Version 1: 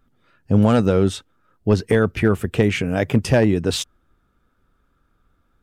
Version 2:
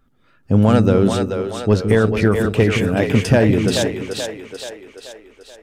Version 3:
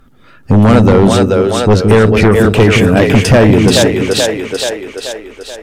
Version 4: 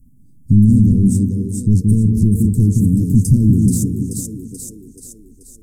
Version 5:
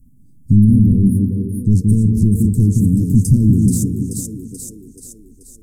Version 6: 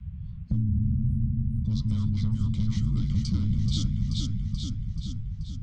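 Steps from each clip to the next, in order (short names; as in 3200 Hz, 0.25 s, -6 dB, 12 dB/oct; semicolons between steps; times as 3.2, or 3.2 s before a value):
split-band echo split 380 Hz, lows 0.172 s, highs 0.432 s, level -5 dB; on a send at -22 dB: reverb RT60 0.35 s, pre-delay 4 ms; on the sum: gain +1.5 dB
in parallel at +2.5 dB: compressor, threshold -23 dBFS, peak gain reduction 13.5 dB; on the sum: sine folder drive 7 dB, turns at 2 dBFS; gain -3.5 dB
inverse Chebyshev band-stop 670–3100 Hz, stop band 60 dB; gain -1.5 dB
spectral delete 0.58–1.66, 580–9100 Hz
mistuned SSB -320 Hz 220–3400 Hz; dynamic EQ 380 Hz, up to +4 dB, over -52 dBFS, Q 3.8; spectral compressor 4:1; gain -6 dB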